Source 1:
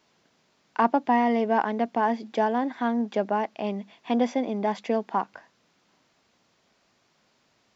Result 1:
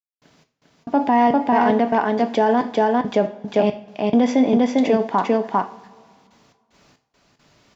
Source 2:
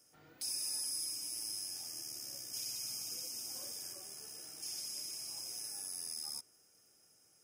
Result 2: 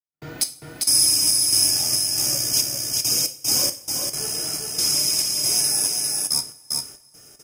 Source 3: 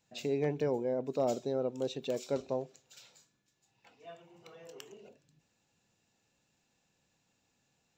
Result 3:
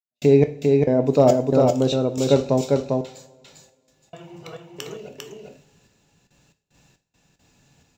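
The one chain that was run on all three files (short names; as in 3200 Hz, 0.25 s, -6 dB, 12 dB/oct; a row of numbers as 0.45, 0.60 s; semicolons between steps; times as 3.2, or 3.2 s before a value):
low shelf 170 Hz +9.5 dB; step gate ".x..xx.xx.xx..x" 69 bpm -60 dB; echo 0.399 s -3 dB; two-slope reverb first 0.37 s, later 2.2 s, from -21 dB, DRR 7.5 dB; maximiser +15 dB; match loudness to -19 LUFS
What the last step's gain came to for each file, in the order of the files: -6.5, +7.0, -1.0 dB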